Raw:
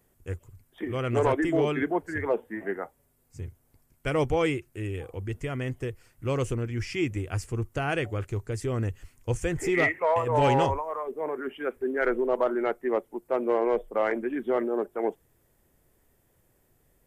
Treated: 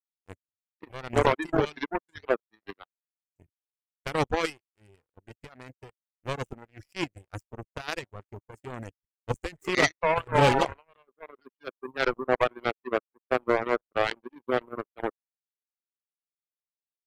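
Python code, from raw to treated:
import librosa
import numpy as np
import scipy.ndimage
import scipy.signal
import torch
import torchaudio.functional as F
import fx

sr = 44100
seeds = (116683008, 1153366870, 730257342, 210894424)

y = fx.power_curve(x, sr, exponent=3.0)
y = fx.dereverb_blind(y, sr, rt60_s=1.4)
y = y * librosa.db_to_amplitude(8.5)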